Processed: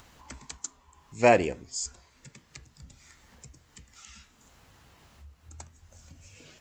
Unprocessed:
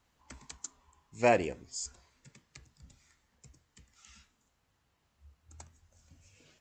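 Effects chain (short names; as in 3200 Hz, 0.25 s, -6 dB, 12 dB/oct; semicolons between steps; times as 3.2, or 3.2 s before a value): upward compressor, threshold -50 dBFS; gain +5.5 dB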